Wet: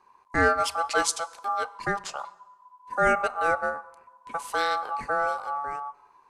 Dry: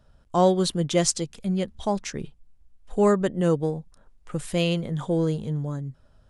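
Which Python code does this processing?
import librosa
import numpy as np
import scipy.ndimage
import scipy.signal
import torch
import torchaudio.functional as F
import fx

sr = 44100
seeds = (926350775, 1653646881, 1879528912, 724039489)

y = x * np.sin(2.0 * np.pi * 1000.0 * np.arange(len(x)) / sr)
y = fx.rev_fdn(y, sr, rt60_s=1.1, lf_ratio=0.95, hf_ratio=0.85, size_ms=77.0, drr_db=17.0)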